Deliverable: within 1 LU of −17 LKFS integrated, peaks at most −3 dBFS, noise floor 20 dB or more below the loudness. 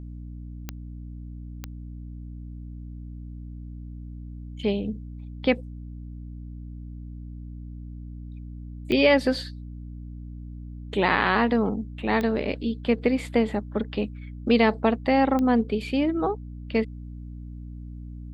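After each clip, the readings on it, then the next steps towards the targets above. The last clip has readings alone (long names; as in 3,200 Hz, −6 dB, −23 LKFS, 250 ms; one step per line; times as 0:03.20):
number of clicks 5; mains hum 60 Hz; hum harmonics up to 300 Hz; level of the hum −35 dBFS; integrated loudness −24.5 LKFS; sample peak −7.0 dBFS; target loudness −17.0 LKFS
→ click removal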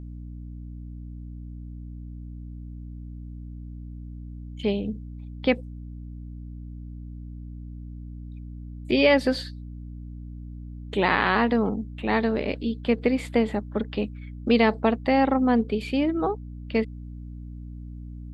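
number of clicks 0; mains hum 60 Hz; hum harmonics up to 300 Hz; level of the hum −35 dBFS
→ mains-hum notches 60/120/180/240/300 Hz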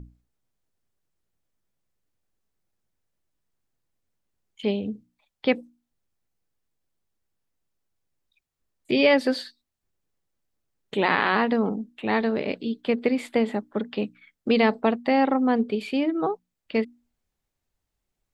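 mains hum none found; integrated loudness −24.5 LKFS; sample peak −6.0 dBFS; target loudness −17.0 LKFS
→ level +7.5 dB
brickwall limiter −3 dBFS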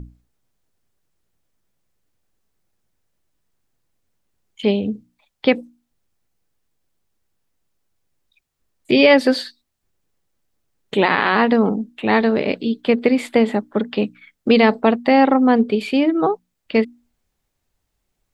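integrated loudness −17.5 LKFS; sample peak −3.0 dBFS; background noise floor −75 dBFS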